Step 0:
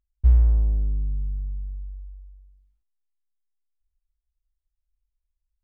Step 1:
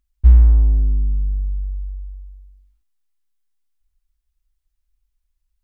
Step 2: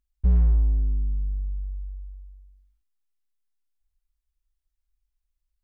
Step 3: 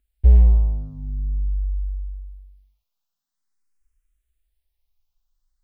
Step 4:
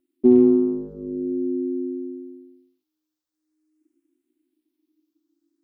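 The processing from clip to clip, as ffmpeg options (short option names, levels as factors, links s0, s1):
-af "equalizer=f=125:t=o:w=1:g=-10,equalizer=f=250:t=o:w=1:g=5,equalizer=f=500:t=o:w=1:g=-8,volume=2.66"
-af "asoftclip=type=hard:threshold=0.398,volume=0.447"
-filter_complex "[0:a]asplit=2[s0][s1];[s1]afreqshift=0.46[s2];[s0][s2]amix=inputs=2:normalize=1,volume=2.66"
-af "aeval=exprs='val(0)*sin(2*PI*310*n/s)':c=same"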